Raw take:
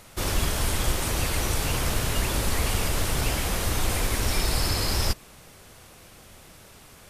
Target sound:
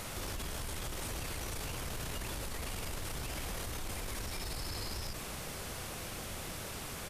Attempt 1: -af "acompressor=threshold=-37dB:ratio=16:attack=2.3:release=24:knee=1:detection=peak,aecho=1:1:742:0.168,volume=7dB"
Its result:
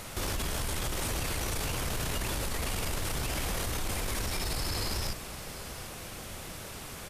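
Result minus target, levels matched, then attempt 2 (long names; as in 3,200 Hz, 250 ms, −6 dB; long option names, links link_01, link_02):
downward compressor: peak gain reduction −7 dB
-af "acompressor=threshold=-44.5dB:ratio=16:attack=2.3:release=24:knee=1:detection=peak,aecho=1:1:742:0.168,volume=7dB"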